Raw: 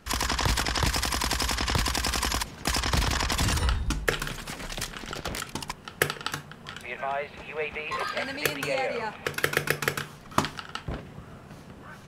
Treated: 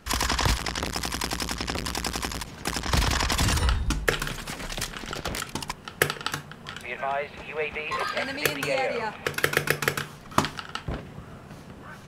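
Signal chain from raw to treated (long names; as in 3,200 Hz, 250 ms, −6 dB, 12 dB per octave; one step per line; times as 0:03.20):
0:00.57–0:02.89: saturating transformer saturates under 830 Hz
level +2 dB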